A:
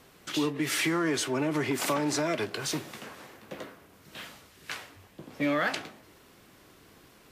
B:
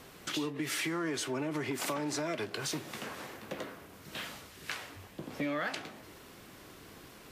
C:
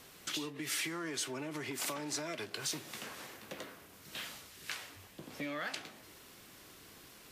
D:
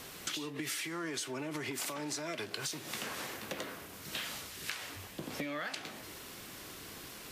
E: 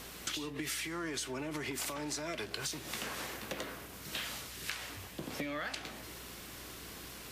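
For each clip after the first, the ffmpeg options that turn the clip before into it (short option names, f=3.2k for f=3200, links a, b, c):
-af "acompressor=threshold=-41dB:ratio=2.5,volume=4dB"
-af "highshelf=f=2.2k:g=8.5,volume=-7dB"
-af "acompressor=threshold=-43dB:ratio=12,volume=8dB"
-af "aeval=exprs='val(0)+0.00141*(sin(2*PI*60*n/s)+sin(2*PI*2*60*n/s)/2+sin(2*PI*3*60*n/s)/3+sin(2*PI*4*60*n/s)/4+sin(2*PI*5*60*n/s)/5)':c=same"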